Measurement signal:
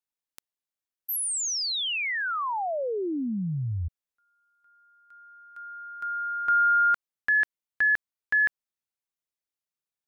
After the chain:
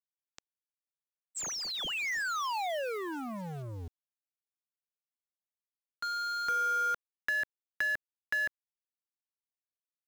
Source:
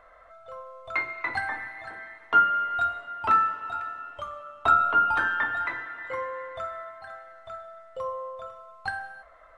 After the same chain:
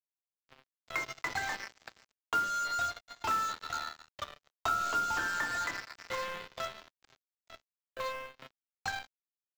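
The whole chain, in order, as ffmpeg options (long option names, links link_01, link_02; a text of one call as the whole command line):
ffmpeg -i in.wav -filter_complex "[0:a]highshelf=frequency=4200:gain=3.5,aresample=16000,acrusher=bits=4:mix=0:aa=0.5,aresample=44100,acrossover=split=640|1800[link_01][link_02][link_03];[link_01]acompressor=threshold=-38dB:ratio=4[link_04];[link_02]acompressor=threshold=-35dB:ratio=2.5[link_05];[link_03]acompressor=threshold=-34dB:ratio=5[link_06];[link_04][link_05][link_06]amix=inputs=3:normalize=0,acrusher=bits=5:mode=log:mix=0:aa=0.000001,volume=-3dB" out.wav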